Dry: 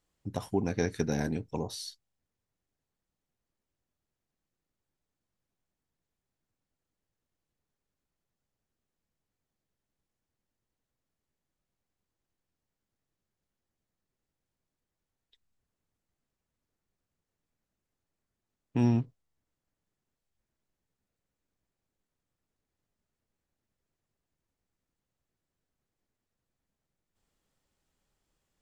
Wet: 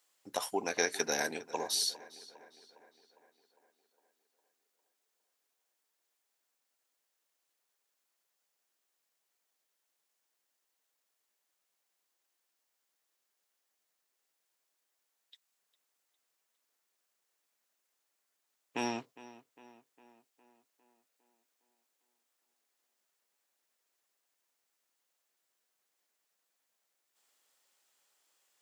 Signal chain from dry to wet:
high-pass filter 510 Hz 12 dB per octave
spectral tilt +2 dB per octave
on a send: tape delay 406 ms, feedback 60%, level −17 dB, low-pass 3,800 Hz
on the sum: level +4.5 dB

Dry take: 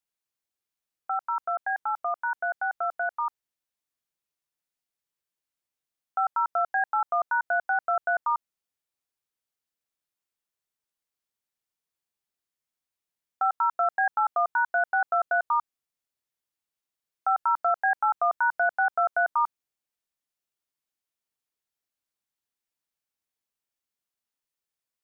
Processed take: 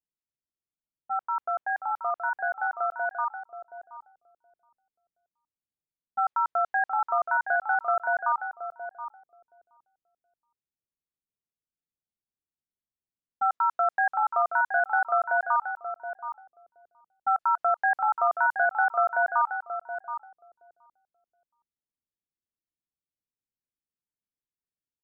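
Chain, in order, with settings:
on a send: repeating echo 723 ms, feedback 23%, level −8.5 dB
on the sum: low-pass that shuts in the quiet parts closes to 310 Hz, open at −20 dBFS

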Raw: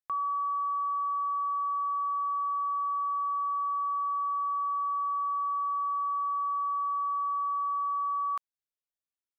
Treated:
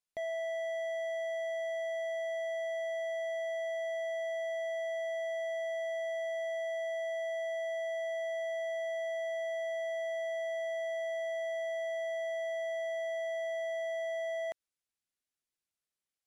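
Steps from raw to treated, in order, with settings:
hard clipping −34 dBFS, distortion −12 dB
wrong playback speed 78 rpm record played at 45 rpm
parametric band 950 Hz −5 dB 0.78 octaves
level +1 dB

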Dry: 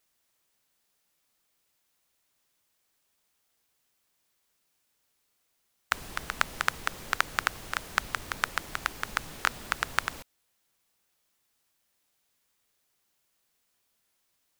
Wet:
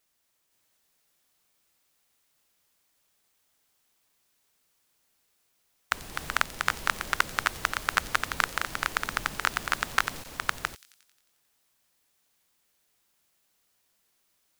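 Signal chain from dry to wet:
delay that plays each chunk backwards 512 ms, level −0.5 dB
delay with a high-pass on its return 89 ms, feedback 63%, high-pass 4,500 Hz, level −12 dB

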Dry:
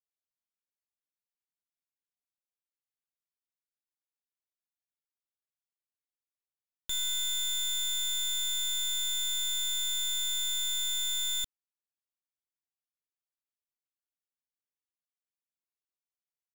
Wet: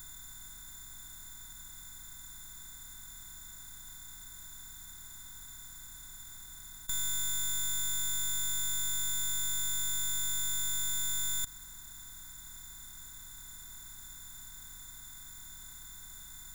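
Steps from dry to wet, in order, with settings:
compressor on every frequency bin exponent 0.2
phaser with its sweep stopped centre 1,200 Hz, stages 4
level +2 dB

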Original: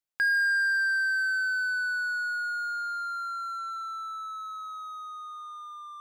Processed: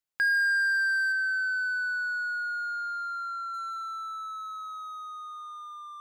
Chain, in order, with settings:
0:01.12–0:03.54: high-shelf EQ 5,400 Hz −10 dB

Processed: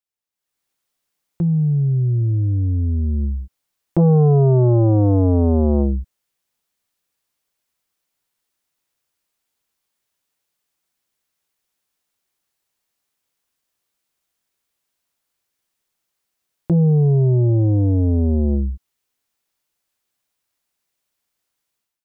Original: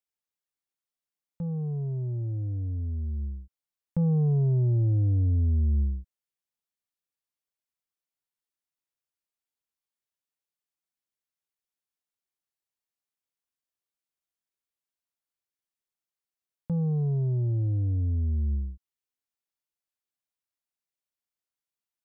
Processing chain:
automatic gain control gain up to 15 dB
saturating transformer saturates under 260 Hz

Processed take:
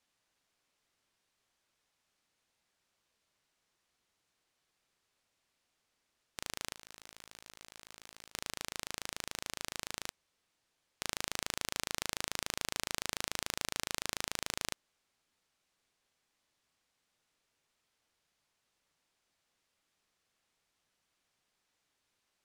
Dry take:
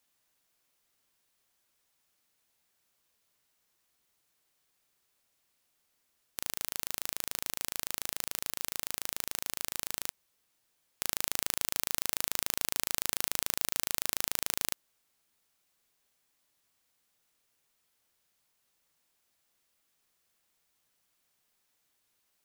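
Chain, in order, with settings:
0:06.74–0:08.32: compressor whose output falls as the input rises −49 dBFS, ratio −1
high-frequency loss of the air 55 metres

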